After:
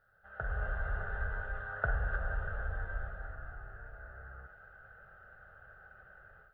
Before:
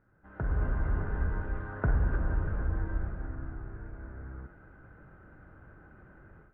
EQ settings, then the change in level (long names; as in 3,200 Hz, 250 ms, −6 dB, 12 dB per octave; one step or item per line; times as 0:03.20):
parametric band 200 Hz −7 dB 2.5 octaves
low-shelf EQ 410 Hz −11.5 dB
phaser with its sweep stopped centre 1,500 Hz, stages 8
+6.5 dB